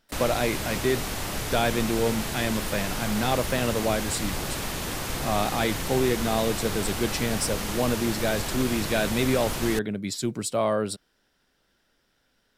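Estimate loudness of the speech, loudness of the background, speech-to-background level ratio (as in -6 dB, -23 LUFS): -27.5 LUFS, -30.5 LUFS, 3.0 dB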